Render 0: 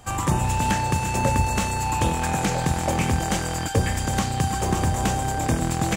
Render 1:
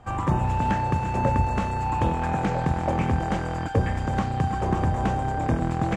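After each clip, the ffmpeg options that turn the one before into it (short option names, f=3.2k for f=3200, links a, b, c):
-af "lowpass=1.4k,aemphasis=mode=production:type=75fm"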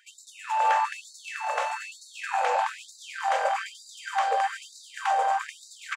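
-af "aecho=1:1:574:0.596,afftfilt=real='re*gte(b*sr/1024,450*pow(3800/450,0.5+0.5*sin(2*PI*1.1*pts/sr)))':imag='im*gte(b*sr/1024,450*pow(3800/450,0.5+0.5*sin(2*PI*1.1*pts/sr)))':win_size=1024:overlap=0.75,volume=4dB"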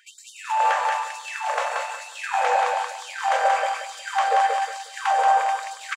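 -af "aecho=1:1:180|360|540|720:0.668|0.18|0.0487|0.0132,volume=3.5dB"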